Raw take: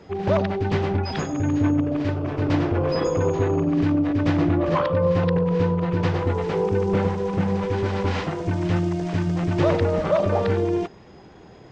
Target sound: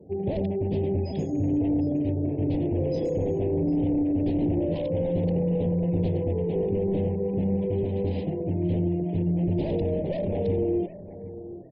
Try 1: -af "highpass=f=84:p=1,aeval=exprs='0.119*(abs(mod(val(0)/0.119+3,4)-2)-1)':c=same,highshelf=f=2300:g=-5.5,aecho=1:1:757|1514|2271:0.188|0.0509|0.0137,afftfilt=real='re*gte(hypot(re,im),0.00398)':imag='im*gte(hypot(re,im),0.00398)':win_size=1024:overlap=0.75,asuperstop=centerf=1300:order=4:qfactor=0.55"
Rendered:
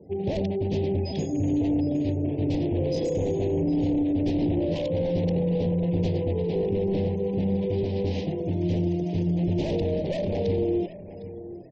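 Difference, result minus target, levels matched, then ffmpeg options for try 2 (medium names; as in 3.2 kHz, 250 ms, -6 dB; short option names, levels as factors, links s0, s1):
4 kHz band +8.5 dB
-af "highpass=f=84:p=1,aeval=exprs='0.119*(abs(mod(val(0)/0.119+3,4)-2)-1)':c=same,highshelf=f=2300:g=-16,aecho=1:1:757|1514|2271:0.188|0.0509|0.0137,afftfilt=real='re*gte(hypot(re,im),0.00398)':imag='im*gte(hypot(re,im),0.00398)':win_size=1024:overlap=0.75,asuperstop=centerf=1300:order=4:qfactor=0.55"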